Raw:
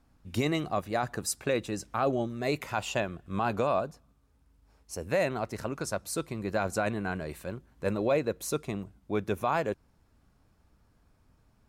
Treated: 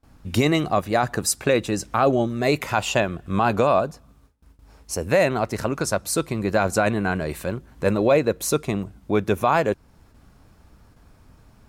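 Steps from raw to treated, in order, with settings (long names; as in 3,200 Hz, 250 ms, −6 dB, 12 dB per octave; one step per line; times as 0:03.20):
noise gate with hold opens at −57 dBFS
in parallel at −2 dB: downward compressor, threshold −42 dBFS, peak gain reduction 18.5 dB
on the sum: level +8 dB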